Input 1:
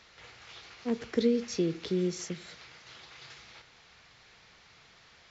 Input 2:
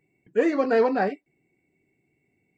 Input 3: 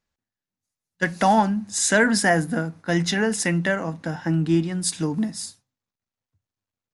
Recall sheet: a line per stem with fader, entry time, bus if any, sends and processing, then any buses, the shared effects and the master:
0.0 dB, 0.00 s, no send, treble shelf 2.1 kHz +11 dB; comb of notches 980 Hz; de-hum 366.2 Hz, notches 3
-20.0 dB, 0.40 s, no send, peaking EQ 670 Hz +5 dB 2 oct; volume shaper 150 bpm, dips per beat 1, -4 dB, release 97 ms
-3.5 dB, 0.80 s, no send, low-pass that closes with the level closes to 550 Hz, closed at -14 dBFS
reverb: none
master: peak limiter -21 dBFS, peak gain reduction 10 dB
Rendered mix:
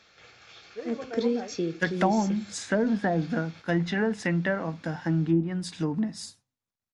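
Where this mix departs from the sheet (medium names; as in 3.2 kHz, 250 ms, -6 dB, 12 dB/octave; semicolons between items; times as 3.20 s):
stem 1: missing treble shelf 2.1 kHz +11 dB; master: missing peak limiter -21 dBFS, peak gain reduction 10 dB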